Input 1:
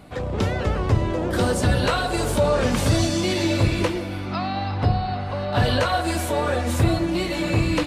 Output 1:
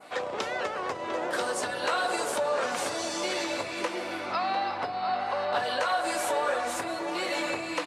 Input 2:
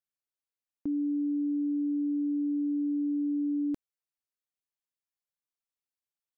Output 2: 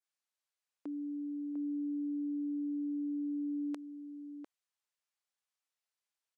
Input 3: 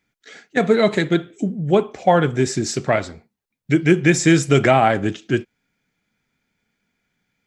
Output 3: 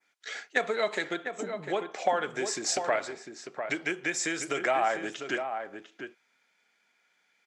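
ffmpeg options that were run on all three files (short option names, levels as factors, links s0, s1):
-filter_complex "[0:a]acompressor=threshold=0.0631:ratio=6,highpass=630,adynamicequalizer=threshold=0.00447:dfrequency=3500:dqfactor=0.92:tfrequency=3500:tqfactor=0.92:attack=5:release=100:ratio=0.375:range=2.5:mode=cutabove:tftype=bell,lowpass=9400,asplit=2[s0][s1];[s1]adelay=699.7,volume=0.447,highshelf=f=4000:g=-15.7[s2];[s0][s2]amix=inputs=2:normalize=0,volume=1.58"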